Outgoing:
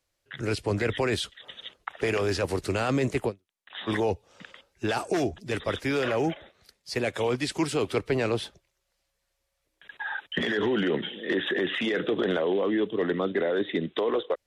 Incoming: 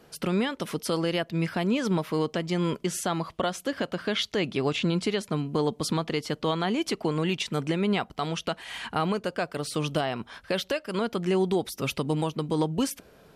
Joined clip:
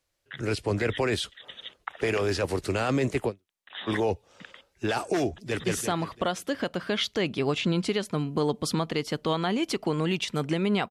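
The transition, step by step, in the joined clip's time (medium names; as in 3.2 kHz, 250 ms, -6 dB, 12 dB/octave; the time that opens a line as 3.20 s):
outgoing
5.35–5.64 s: echo throw 170 ms, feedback 45%, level -1 dB
5.64 s: go over to incoming from 2.82 s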